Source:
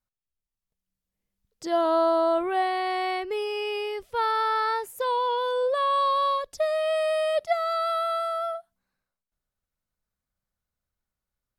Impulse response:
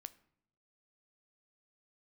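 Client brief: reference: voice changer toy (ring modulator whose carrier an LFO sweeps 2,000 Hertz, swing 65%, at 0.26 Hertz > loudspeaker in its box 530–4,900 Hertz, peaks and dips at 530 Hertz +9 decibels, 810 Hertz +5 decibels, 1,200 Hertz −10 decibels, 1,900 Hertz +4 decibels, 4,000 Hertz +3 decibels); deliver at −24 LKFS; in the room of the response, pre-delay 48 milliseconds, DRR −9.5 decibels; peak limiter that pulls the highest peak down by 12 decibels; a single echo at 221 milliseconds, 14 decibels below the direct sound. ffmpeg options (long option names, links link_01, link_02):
-filter_complex "[0:a]alimiter=level_in=1dB:limit=-24dB:level=0:latency=1,volume=-1dB,aecho=1:1:221:0.2,asplit=2[link_01][link_02];[1:a]atrim=start_sample=2205,adelay=48[link_03];[link_02][link_03]afir=irnorm=-1:irlink=0,volume=15.5dB[link_04];[link_01][link_04]amix=inputs=2:normalize=0,aeval=exprs='val(0)*sin(2*PI*2000*n/s+2000*0.65/0.26*sin(2*PI*0.26*n/s))':channel_layout=same,highpass=530,equalizer=frequency=530:width_type=q:width=4:gain=9,equalizer=frequency=810:width_type=q:width=4:gain=5,equalizer=frequency=1200:width_type=q:width=4:gain=-10,equalizer=frequency=1900:width_type=q:width=4:gain=4,equalizer=frequency=4000:width_type=q:width=4:gain=3,lowpass=frequency=4900:width=0.5412,lowpass=frequency=4900:width=1.3066,volume=-2.5dB"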